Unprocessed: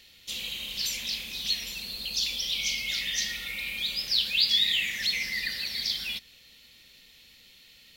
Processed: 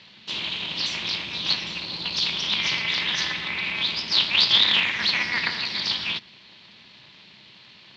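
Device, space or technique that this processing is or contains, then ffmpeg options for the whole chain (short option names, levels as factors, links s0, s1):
ring modulator pedal into a guitar cabinet: -af "aeval=exprs='val(0)*sgn(sin(2*PI*120*n/s))':c=same,highpass=98,equalizer=f=130:t=q:w=4:g=5,equalizer=f=210:t=q:w=4:g=10,equalizer=f=980:t=q:w=4:g=8,lowpass=f=4500:w=0.5412,lowpass=f=4500:w=1.3066,volume=2.11"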